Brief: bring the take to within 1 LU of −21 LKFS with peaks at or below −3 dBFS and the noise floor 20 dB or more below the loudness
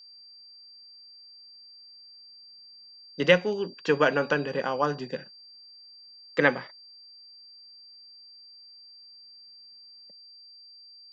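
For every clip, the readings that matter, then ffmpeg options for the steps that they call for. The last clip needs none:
interfering tone 4,700 Hz; level of the tone −48 dBFS; integrated loudness −26.0 LKFS; sample peak −5.5 dBFS; target loudness −21.0 LKFS
→ -af "bandreject=frequency=4700:width=30"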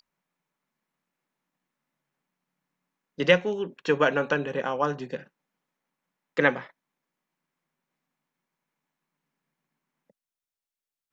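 interfering tone none found; integrated loudness −25.5 LKFS; sample peak −5.5 dBFS; target loudness −21.0 LKFS
→ -af "volume=4.5dB,alimiter=limit=-3dB:level=0:latency=1"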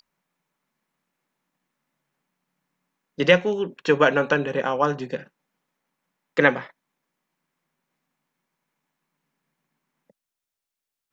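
integrated loudness −21.5 LKFS; sample peak −3.0 dBFS; background noise floor −86 dBFS

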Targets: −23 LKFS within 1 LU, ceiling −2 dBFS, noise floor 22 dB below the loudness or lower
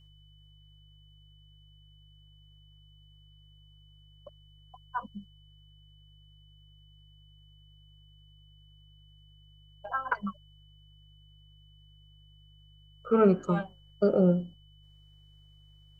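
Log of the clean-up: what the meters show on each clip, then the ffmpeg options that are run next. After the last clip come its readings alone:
mains hum 50 Hz; hum harmonics up to 150 Hz; level of the hum −56 dBFS; interfering tone 3,000 Hz; level of the tone −62 dBFS; integrated loudness −28.0 LKFS; sample peak −11.0 dBFS; target loudness −23.0 LKFS
→ -af "bandreject=frequency=50:width_type=h:width=4,bandreject=frequency=100:width_type=h:width=4,bandreject=frequency=150:width_type=h:width=4"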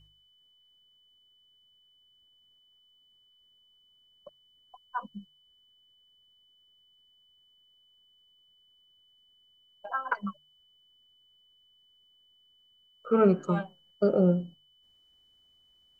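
mains hum none found; interfering tone 3,000 Hz; level of the tone −62 dBFS
→ -af "bandreject=frequency=3000:width=30"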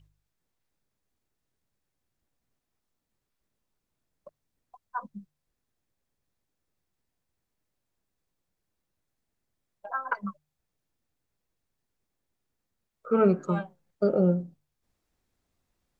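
interfering tone none found; integrated loudness −28.0 LKFS; sample peak −11.0 dBFS; target loudness −23.0 LKFS
→ -af "volume=5dB"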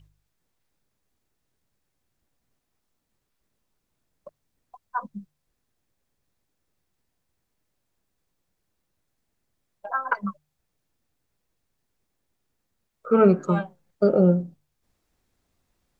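integrated loudness −23.0 LKFS; sample peak −6.0 dBFS; background noise floor −78 dBFS

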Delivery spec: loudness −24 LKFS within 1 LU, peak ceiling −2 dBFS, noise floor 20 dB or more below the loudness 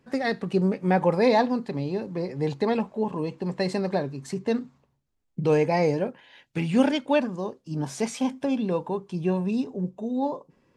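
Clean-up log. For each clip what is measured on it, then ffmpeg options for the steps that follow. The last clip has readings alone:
integrated loudness −26.5 LKFS; sample peak −8.5 dBFS; target loudness −24.0 LKFS
→ -af "volume=2.5dB"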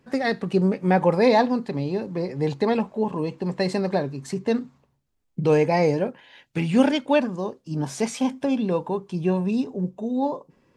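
integrated loudness −24.0 LKFS; sample peak −6.0 dBFS; background noise floor −69 dBFS

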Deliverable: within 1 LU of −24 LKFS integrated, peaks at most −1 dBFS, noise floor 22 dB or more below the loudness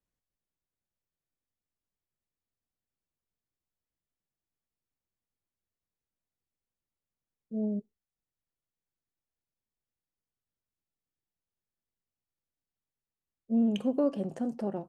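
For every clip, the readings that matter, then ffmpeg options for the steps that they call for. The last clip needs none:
integrated loudness −31.0 LKFS; sample peak −17.0 dBFS; target loudness −24.0 LKFS
→ -af "volume=7dB"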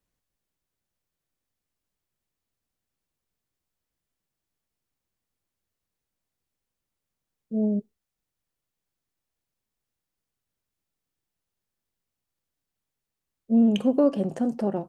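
integrated loudness −24.0 LKFS; sample peak −10.0 dBFS; background noise floor −86 dBFS

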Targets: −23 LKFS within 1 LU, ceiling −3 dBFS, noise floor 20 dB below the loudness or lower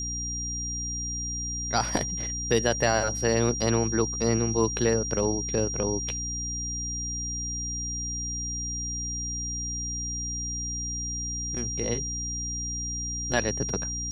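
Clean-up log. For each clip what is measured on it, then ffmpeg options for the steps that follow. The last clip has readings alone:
mains hum 60 Hz; hum harmonics up to 300 Hz; level of the hum −34 dBFS; interfering tone 5,700 Hz; level of the tone −31 dBFS; integrated loudness −28.0 LKFS; sample peak −9.0 dBFS; target loudness −23.0 LKFS
→ -af "bandreject=frequency=60:width_type=h:width=6,bandreject=frequency=120:width_type=h:width=6,bandreject=frequency=180:width_type=h:width=6,bandreject=frequency=240:width_type=h:width=6,bandreject=frequency=300:width_type=h:width=6"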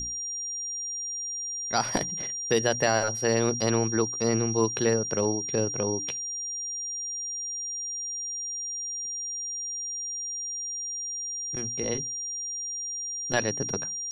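mains hum none found; interfering tone 5,700 Hz; level of the tone −31 dBFS
→ -af "bandreject=frequency=5700:width=30"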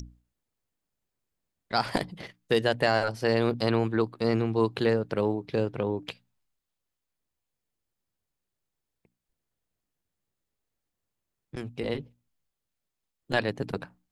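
interfering tone none found; integrated loudness −28.0 LKFS; sample peak −9.5 dBFS; target loudness −23.0 LKFS
→ -af "volume=5dB"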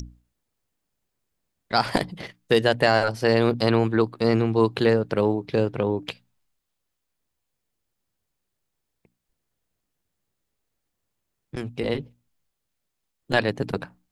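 integrated loudness −23.0 LKFS; sample peak −4.5 dBFS; background noise floor −80 dBFS

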